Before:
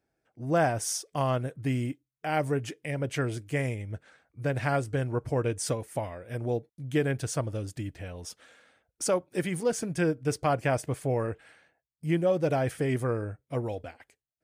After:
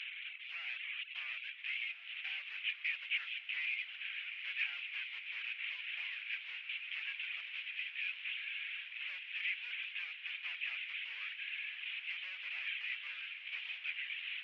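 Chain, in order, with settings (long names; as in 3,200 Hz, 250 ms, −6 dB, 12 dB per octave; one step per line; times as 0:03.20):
linear delta modulator 16 kbit/s, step −43.5 dBFS
reverb reduction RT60 0.74 s
in parallel at −5 dB: asymmetric clip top −40.5 dBFS
on the sum: Chebyshev high-pass filter 2,400 Hz, order 4
high-frequency loss of the air 300 metres
on a send: feedback delay with all-pass diffusion 1,427 ms, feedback 65%, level −9 dB
on the sum: level +17.5 dB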